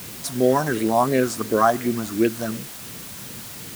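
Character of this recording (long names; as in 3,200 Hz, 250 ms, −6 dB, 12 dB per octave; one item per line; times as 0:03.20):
phaser sweep stages 4, 2.8 Hz, lowest notch 420–1,000 Hz
a quantiser's noise floor 8 bits, dither triangular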